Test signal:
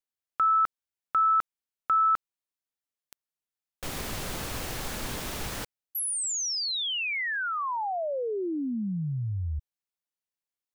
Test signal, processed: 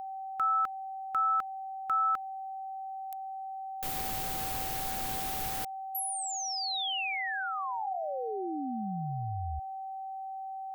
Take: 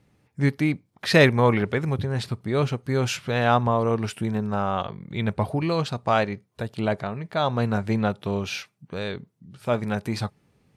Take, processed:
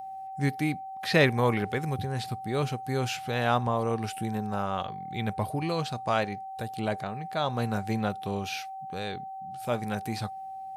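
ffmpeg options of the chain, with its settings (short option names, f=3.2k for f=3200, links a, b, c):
-filter_complex "[0:a]acrossover=split=4300[a][b];[b]acompressor=threshold=-43dB:ratio=4:attack=1:release=60[c];[a][c]amix=inputs=2:normalize=0,aeval=exprs='val(0)+0.0282*sin(2*PI*770*n/s)':c=same,aemphasis=mode=production:type=50fm,volume=-5.5dB"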